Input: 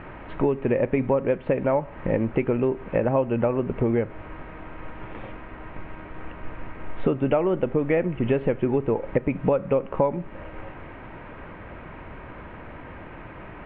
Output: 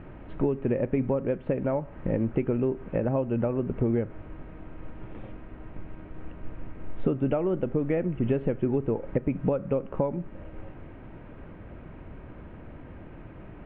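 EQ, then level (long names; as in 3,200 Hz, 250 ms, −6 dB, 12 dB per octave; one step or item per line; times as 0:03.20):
octave-band graphic EQ 500/1,000/2,000 Hz −3/−8/−6 dB
dynamic equaliser 1,400 Hz, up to +4 dB, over −47 dBFS, Q 0.94
high-shelf EQ 2,000 Hz −8.5 dB
−1.0 dB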